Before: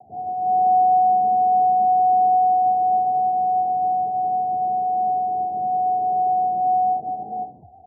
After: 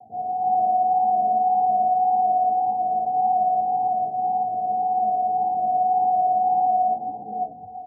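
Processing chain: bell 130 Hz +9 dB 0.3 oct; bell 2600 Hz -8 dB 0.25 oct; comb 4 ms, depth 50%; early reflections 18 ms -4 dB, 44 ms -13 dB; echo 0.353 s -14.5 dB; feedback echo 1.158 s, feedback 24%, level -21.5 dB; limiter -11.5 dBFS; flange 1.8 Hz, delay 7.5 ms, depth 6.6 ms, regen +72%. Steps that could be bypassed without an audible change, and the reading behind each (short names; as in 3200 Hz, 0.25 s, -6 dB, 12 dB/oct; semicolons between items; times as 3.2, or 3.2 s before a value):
bell 2600 Hz: input band ends at 810 Hz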